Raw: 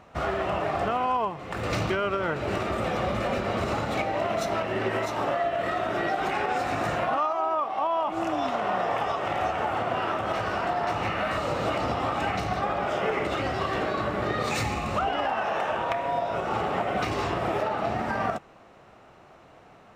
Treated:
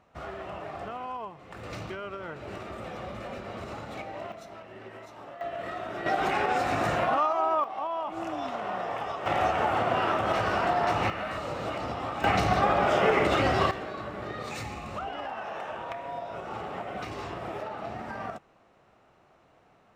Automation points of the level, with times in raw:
−11 dB
from 0:04.32 −17.5 dB
from 0:05.41 −8 dB
from 0:06.06 +0.5 dB
from 0:07.64 −6 dB
from 0:09.26 +1.5 dB
from 0:11.10 −6 dB
from 0:12.24 +4 dB
from 0:13.71 −9 dB

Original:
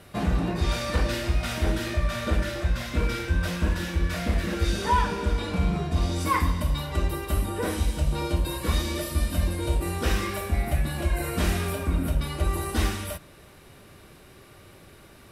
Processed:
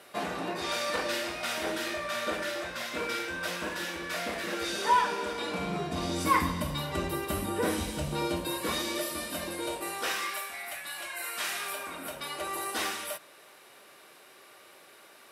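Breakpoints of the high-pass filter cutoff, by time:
0:05.29 420 Hz
0:06.31 150 Hz
0:08.01 150 Hz
0:08.99 360 Hz
0:09.56 360 Hz
0:10.54 1,200 Hz
0:11.37 1,200 Hz
0:12.23 540 Hz

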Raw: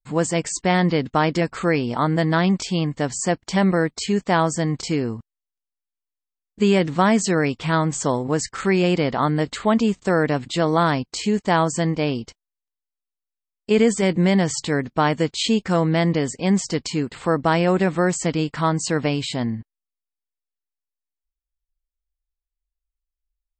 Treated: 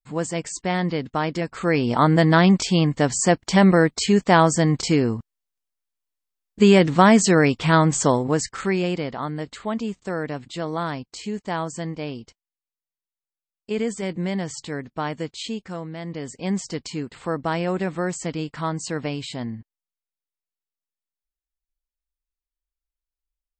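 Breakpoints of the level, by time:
0:01.51 −5 dB
0:01.91 +3.5 dB
0:08.04 +3.5 dB
0:09.20 −8.5 dB
0:15.34 −8.5 dB
0:15.97 −15.5 dB
0:16.40 −6 dB

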